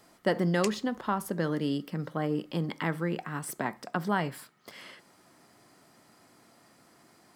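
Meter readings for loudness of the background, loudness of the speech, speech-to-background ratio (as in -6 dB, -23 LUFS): -40.0 LUFS, -31.5 LUFS, 8.5 dB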